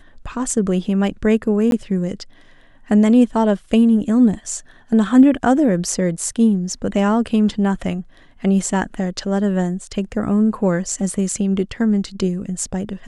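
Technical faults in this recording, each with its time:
1.71–1.72 s: dropout 12 ms

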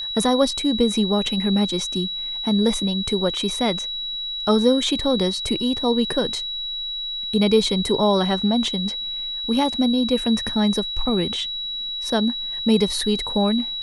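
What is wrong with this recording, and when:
whine 3.9 kHz -26 dBFS

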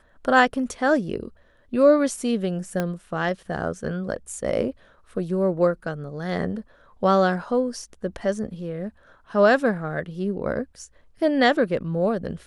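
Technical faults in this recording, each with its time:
2.80 s: pop -12 dBFS

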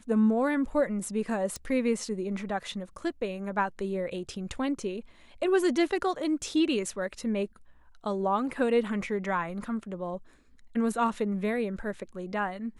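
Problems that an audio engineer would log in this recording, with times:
1.56 s: pop

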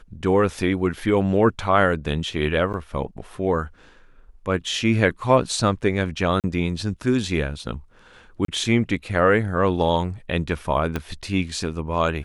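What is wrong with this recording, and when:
2.73–2.74 s: dropout 8.6 ms
6.40–6.44 s: dropout 38 ms
8.45–8.48 s: dropout 33 ms
10.96 s: pop -12 dBFS

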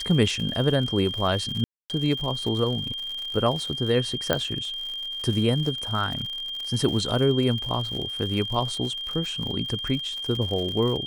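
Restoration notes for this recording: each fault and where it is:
crackle 100 per s -31 dBFS
whine 3.2 kHz -30 dBFS
1.64–1.90 s: dropout 258 ms
4.33 s: pop -8 dBFS

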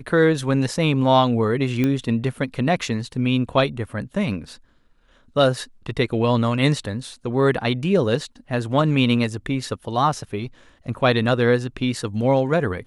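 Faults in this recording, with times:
1.84 s: pop -10 dBFS

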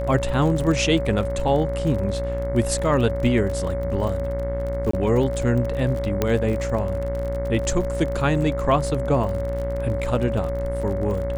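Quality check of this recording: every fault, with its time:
buzz 60 Hz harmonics 37 -28 dBFS
crackle 41 per s -28 dBFS
whine 560 Hz -26 dBFS
4.91–4.93 s: dropout 24 ms
6.22 s: pop -7 dBFS

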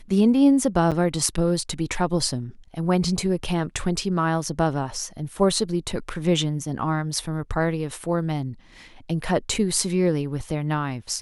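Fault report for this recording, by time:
0.91–0.92 s: dropout 7.5 ms

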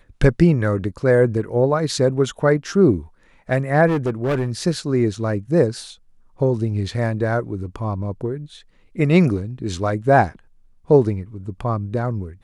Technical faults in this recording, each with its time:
3.87–4.50 s: clipped -16.5 dBFS

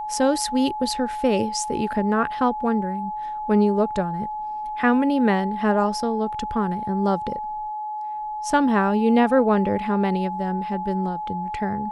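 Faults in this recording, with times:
whine 850 Hz -27 dBFS

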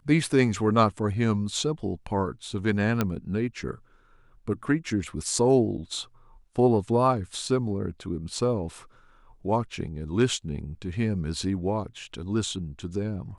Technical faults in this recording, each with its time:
3.01 s: pop -10 dBFS

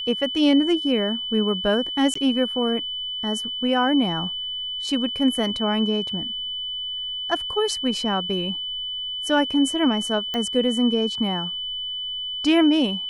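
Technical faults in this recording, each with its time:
whine 3 kHz -27 dBFS
2.14–2.15 s: dropout 14 ms
10.34 s: pop -14 dBFS

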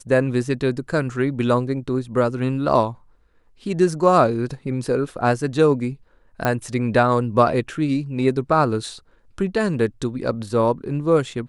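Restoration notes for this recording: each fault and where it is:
6.45 s: pop -8 dBFS

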